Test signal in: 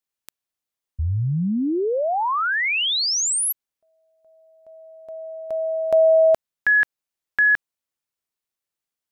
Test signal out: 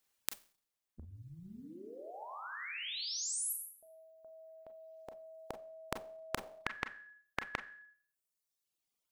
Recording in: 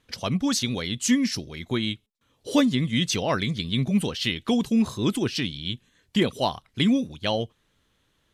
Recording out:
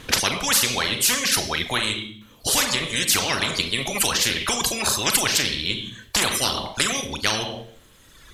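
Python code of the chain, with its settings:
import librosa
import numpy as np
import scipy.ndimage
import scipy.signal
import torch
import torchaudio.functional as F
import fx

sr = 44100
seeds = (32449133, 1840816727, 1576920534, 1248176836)

y = fx.rider(x, sr, range_db=10, speed_s=2.0)
y = fx.rev_schroeder(y, sr, rt60_s=0.52, comb_ms=29, drr_db=6.0)
y = fx.dereverb_blind(y, sr, rt60_s=1.3)
y = fx.spectral_comp(y, sr, ratio=10.0)
y = y * 10.0 ** (5.0 / 20.0)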